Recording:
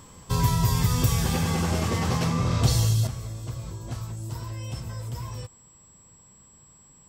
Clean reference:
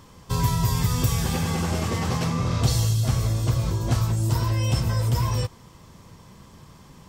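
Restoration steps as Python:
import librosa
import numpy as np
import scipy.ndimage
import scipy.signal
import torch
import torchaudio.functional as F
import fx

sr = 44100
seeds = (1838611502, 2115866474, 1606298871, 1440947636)

y = fx.notch(x, sr, hz=7700.0, q=30.0)
y = fx.gain(y, sr, db=fx.steps((0.0, 0.0), (3.07, 11.5)))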